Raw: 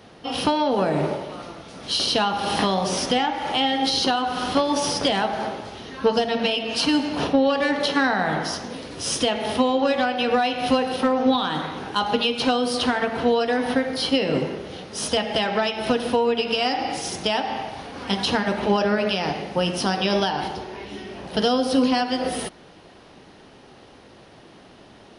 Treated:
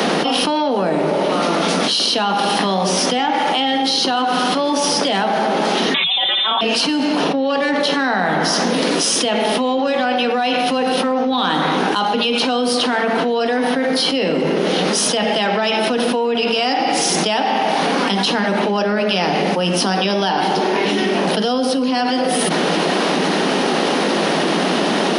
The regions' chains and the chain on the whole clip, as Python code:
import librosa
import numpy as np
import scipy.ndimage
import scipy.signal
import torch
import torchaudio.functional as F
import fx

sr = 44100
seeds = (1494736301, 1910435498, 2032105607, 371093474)

y = fx.chain(x, sr, fx.freq_invert(carrier_hz=3800),
    fx.comb(ms=5.3, depth=0.66),
    fx.over_compress(threshold_db=-23.0, ratio=-0.5), at=(5.94, 6.61))
y = scipy.signal.sosfilt(scipy.signal.butter(16, 160.0, 'highpass', fs=sr, output='sos'), y)
y = fx.env_flatten(y, sr, amount_pct=100)
y = y * librosa.db_to_amplitude(-2.5)